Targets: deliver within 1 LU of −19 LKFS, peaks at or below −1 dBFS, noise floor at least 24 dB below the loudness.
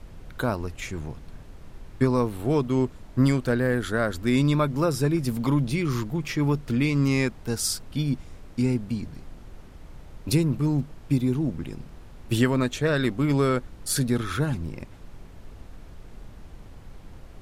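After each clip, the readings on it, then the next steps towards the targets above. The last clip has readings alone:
background noise floor −46 dBFS; target noise floor −50 dBFS; integrated loudness −25.5 LKFS; sample peak −9.0 dBFS; target loudness −19.0 LKFS
→ noise reduction from a noise print 6 dB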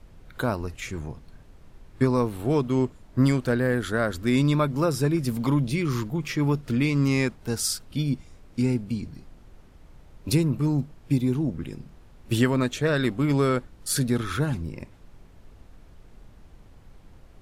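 background noise floor −51 dBFS; integrated loudness −25.5 LKFS; sample peak −8.5 dBFS; target loudness −19.0 LKFS
→ level +6.5 dB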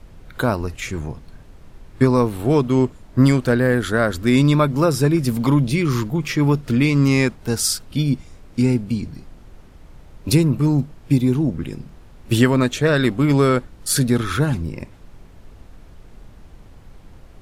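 integrated loudness −19.0 LKFS; sample peak −2.0 dBFS; background noise floor −45 dBFS

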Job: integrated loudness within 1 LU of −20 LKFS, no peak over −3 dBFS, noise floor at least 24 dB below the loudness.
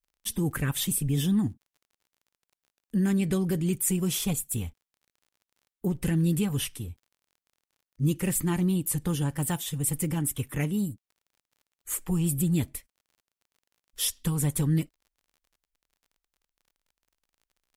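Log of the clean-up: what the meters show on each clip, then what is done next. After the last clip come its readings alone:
crackle rate 33 per second; integrated loudness −28.0 LKFS; sample peak −14.0 dBFS; target loudness −20.0 LKFS
→ click removal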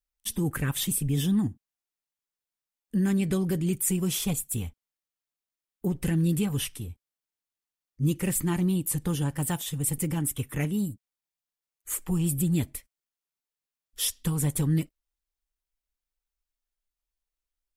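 crackle rate 0.056 per second; integrated loudness −28.0 LKFS; sample peak −14.0 dBFS; target loudness −20.0 LKFS
→ level +8 dB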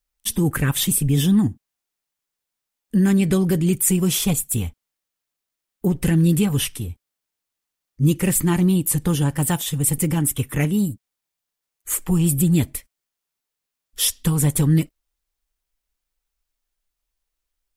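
integrated loudness −20.0 LKFS; sample peak −6.0 dBFS; background noise floor −84 dBFS

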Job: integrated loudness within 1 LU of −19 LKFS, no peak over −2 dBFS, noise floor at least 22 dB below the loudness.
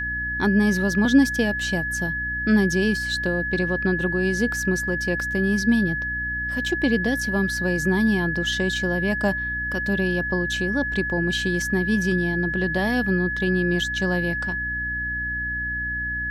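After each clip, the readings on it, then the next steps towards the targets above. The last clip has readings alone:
mains hum 60 Hz; hum harmonics up to 300 Hz; level of the hum −33 dBFS; interfering tone 1,700 Hz; level of the tone −25 dBFS; integrated loudness −22.5 LKFS; sample peak −6.5 dBFS; target loudness −19.0 LKFS
→ hum removal 60 Hz, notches 5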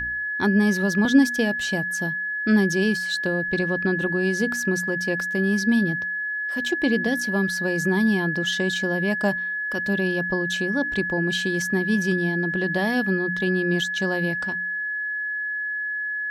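mains hum none found; interfering tone 1,700 Hz; level of the tone −25 dBFS
→ notch filter 1,700 Hz, Q 30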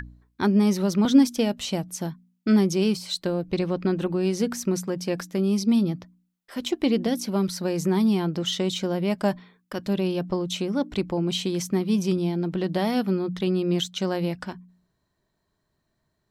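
interfering tone none found; integrated loudness −25.0 LKFS; sample peak −6.5 dBFS; target loudness −19.0 LKFS
→ level +6 dB
brickwall limiter −2 dBFS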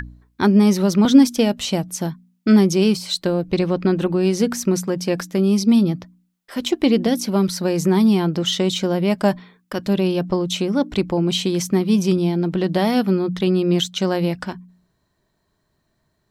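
integrated loudness −19.0 LKFS; sample peak −2.0 dBFS; background noise floor −70 dBFS

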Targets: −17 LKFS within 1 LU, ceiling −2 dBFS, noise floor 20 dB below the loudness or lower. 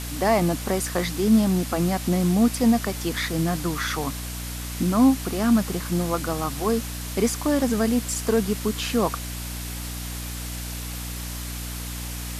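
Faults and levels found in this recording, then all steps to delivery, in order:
mains hum 60 Hz; hum harmonics up to 300 Hz; level of the hum −31 dBFS; background noise floor −33 dBFS; target noise floor −45 dBFS; integrated loudness −24.5 LKFS; sample peak −8.0 dBFS; target loudness −17.0 LKFS
→ hum removal 60 Hz, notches 5
broadband denoise 12 dB, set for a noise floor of −33 dBFS
level +7.5 dB
brickwall limiter −2 dBFS

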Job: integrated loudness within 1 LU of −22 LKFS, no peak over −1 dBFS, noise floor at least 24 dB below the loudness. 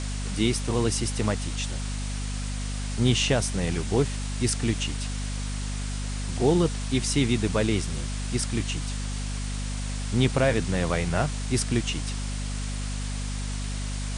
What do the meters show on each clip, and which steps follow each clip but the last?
mains hum 50 Hz; hum harmonics up to 250 Hz; level of the hum −28 dBFS; background noise floor −31 dBFS; target noise floor −52 dBFS; integrated loudness −27.5 LKFS; sample peak −8.5 dBFS; target loudness −22.0 LKFS
→ mains-hum notches 50/100/150/200/250 Hz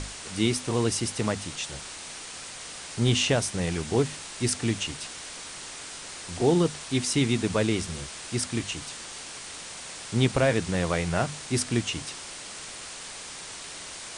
mains hum none found; background noise floor −41 dBFS; target noise floor −53 dBFS
→ noise reduction from a noise print 12 dB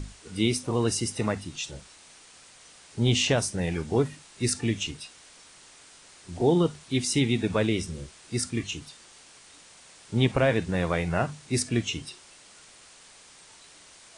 background noise floor −53 dBFS; integrated loudness −27.0 LKFS; sample peak −9.0 dBFS; target loudness −22.0 LKFS
→ level +5 dB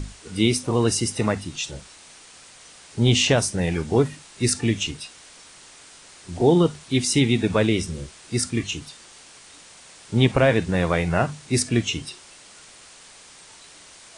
integrated loudness −22.0 LKFS; sample peak −4.0 dBFS; background noise floor −48 dBFS

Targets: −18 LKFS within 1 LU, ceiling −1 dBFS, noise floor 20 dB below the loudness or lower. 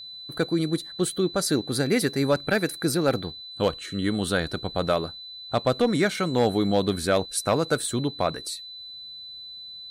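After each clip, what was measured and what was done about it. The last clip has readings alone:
interfering tone 4,000 Hz; level of the tone −38 dBFS; integrated loudness −25.5 LKFS; sample peak −11.5 dBFS; target loudness −18.0 LKFS
→ notch filter 4,000 Hz, Q 30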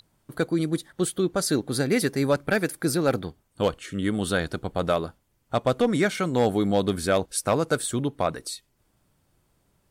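interfering tone none found; integrated loudness −25.5 LKFS; sample peak −12.0 dBFS; target loudness −18.0 LKFS
→ level +7.5 dB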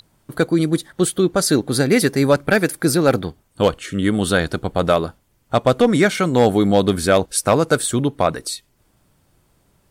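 integrated loudness −18.0 LKFS; sample peak −4.5 dBFS; background noise floor −62 dBFS

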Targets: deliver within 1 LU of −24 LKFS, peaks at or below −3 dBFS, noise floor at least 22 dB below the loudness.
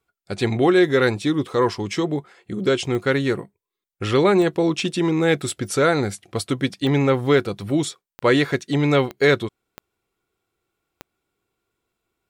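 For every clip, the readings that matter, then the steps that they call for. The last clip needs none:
number of clicks 7; integrated loudness −20.5 LKFS; sample peak −4.0 dBFS; target loudness −24.0 LKFS
→ click removal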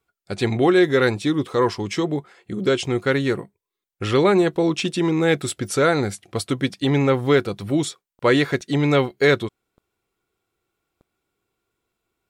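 number of clicks 0; integrated loudness −20.5 LKFS; sample peak −4.0 dBFS; target loudness −24.0 LKFS
→ level −3.5 dB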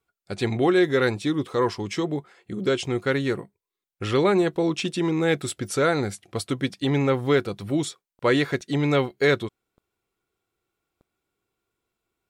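integrated loudness −24.0 LKFS; sample peak −7.5 dBFS; background noise floor −88 dBFS

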